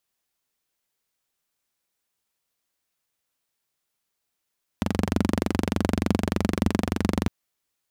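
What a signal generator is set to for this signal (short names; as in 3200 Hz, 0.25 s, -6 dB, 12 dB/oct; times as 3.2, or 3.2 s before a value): single-cylinder engine model, steady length 2.46 s, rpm 2800, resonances 89/200 Hz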